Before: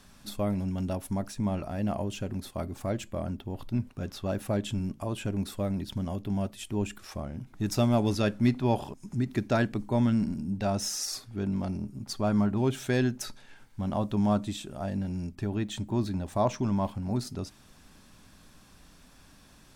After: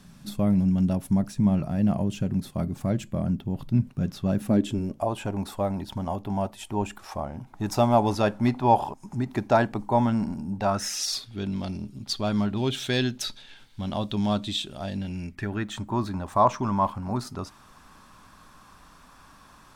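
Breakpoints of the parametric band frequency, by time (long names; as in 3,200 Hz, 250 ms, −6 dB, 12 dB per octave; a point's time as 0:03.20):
parametric band +14 dB 0.96 octaves
0:04.35 160 Hz
0:05.14 860 Hz
0:10.62 860 Hz
0:11.05 3,600 Hz
0:14.95 3,600 Hz
0:15.80 1,100 Hz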